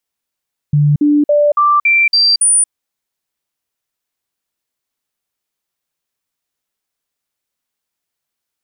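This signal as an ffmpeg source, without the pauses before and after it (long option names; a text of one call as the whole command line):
ffmpeg -f lavfi -i "aevalsrc='0.422*clip(min(mod(t,0.28),0.23-mod(t,0.28))/0.005,0,1)*sin(2*PI*147*pow(2,floor(t/0.28)/1)*mod(t,0.28))':duration=1.96:sample_rate=44100" out.wav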